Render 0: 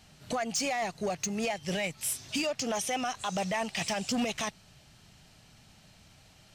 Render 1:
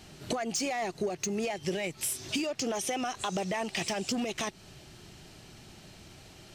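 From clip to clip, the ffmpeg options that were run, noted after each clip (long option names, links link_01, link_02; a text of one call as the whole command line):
ffmpeg -i in.wav -af "equalizer=frequency=360:width_type=o:width=0.5:gain=12.5,acompressor=threshold=-35dB:ratio=6,volume=5.5dB" out.wav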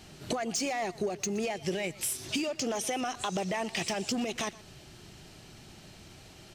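ffmpeg -i in.wav -af "aecho=1:1:120:0.106" out.wav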